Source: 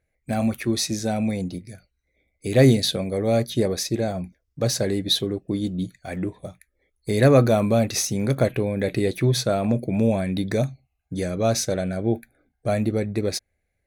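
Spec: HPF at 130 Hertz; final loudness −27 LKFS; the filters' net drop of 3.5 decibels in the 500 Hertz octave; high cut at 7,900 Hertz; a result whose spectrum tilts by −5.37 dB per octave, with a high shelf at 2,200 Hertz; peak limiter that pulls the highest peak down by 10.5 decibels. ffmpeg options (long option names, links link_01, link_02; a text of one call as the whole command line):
ffmpeg -i in.wav -af "highpass=130,lowpass=7900,equalizer=frequency=500:width_type=o:gain=-4,highshelf=frequency=2200:gain=-4,volume=0.5dB,alimiter=limit=-15dB:level=0:latency=1" out.wav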